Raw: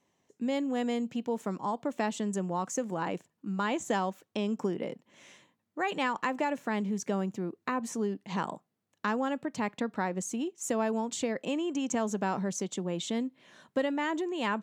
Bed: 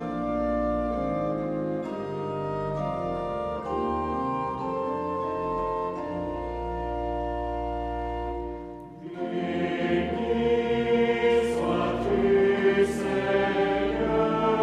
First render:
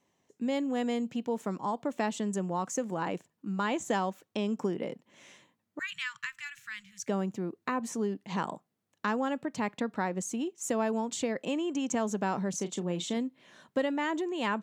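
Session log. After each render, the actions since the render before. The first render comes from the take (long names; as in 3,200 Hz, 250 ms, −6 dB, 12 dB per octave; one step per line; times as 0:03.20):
0:05.79–0:07.08: inverse Chebyshev band-stop filter 240–780 Hz, stop band 50 dB
0:12.50–0:13.17: double-tracking delay 34 ms −12 dB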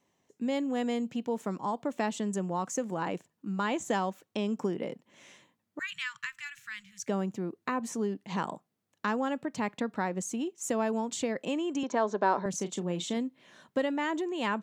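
0:11.83–0:12.46: loudspeaker in its box 280–5,100 Hz, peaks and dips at 380 Hz +6 dB, 590 Hz +7 dB, 1,000 Hz +9 dB, 1,600 Hz +5 dB, 2,800 Hz −6 dB, 4,000 Hz +5 dB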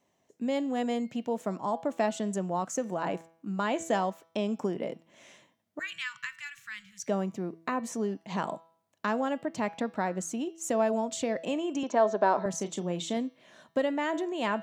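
parametric band 650 Hz +8.5 dB 0.28 octaves
hum removal 164.4 Hz, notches 37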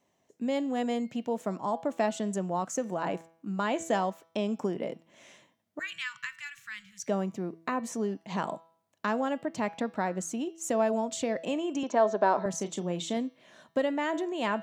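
no processing that can be heard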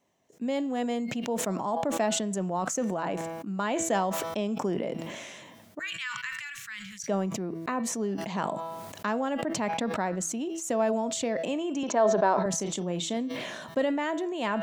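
level that may fall only so fast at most 29 dB per second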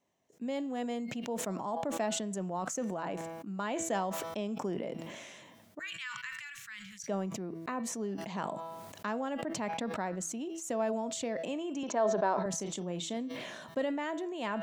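level −6 dB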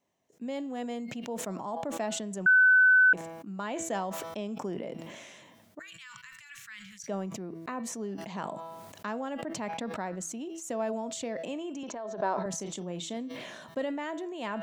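0:02.46–0:03.13: beep over 1,510 Hz −16.5 dBFS
0:05.82–0:06.50: parametric band 1,900 Hz −8.5 dB 2.4 octaves
0:11.69–0:12.20: downward compressor, threshold −35 dBFS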